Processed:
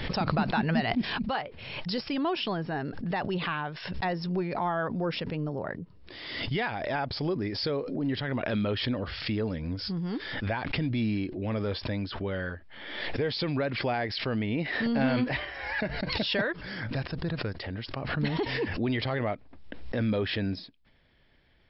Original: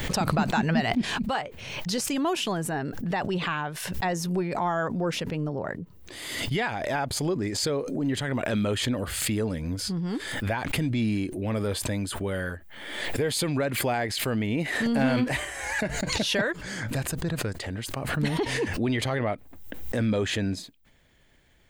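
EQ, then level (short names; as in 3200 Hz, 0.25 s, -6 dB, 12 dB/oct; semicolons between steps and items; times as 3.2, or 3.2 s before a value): brick-wall FIR low-pass 5500 Hz; -2.5 dB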